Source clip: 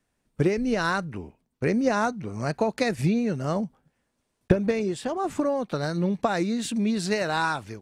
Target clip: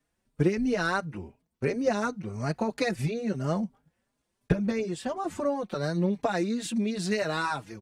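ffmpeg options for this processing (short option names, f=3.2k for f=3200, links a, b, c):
-filter_complex "[0:a]asplit=2[a][b];[b]adelay=4.5,afreqshift=2.9[c];[a][c]amix=inputs=2:normalize=1"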